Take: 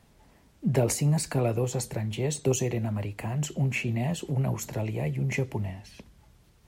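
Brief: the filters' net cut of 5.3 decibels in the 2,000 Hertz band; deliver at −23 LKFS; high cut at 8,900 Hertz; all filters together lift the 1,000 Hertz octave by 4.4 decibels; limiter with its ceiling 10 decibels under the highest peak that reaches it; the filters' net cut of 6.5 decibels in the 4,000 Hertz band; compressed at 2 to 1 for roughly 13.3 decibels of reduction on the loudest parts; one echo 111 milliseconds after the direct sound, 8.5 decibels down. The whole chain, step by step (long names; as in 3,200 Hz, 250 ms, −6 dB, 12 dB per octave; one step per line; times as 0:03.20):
low-pass filter 8,900 Hz
parametric band 1,000 Hz +7.5 dB
parametric band 2,000 Hz −5.5 dB
parametric band 4,000 Hz −7.5 dB
downward compressor 2 to 1, threshold −44 dBFS
brickwall limiter −35 dBFS
single-tap delay 111 ms −8.5 dB
level +20.5 dB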